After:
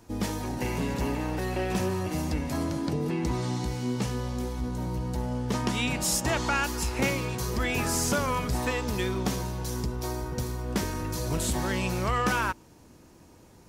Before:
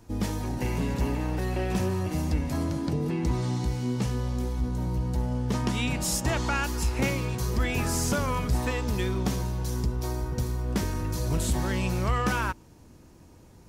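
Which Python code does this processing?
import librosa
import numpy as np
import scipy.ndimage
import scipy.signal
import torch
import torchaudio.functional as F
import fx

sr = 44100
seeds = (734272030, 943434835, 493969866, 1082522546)

y = fx.low_shelf(x, sr, hz=160.0, db=-8.0)
y = y * librosa.db_to_amplitude(2.0)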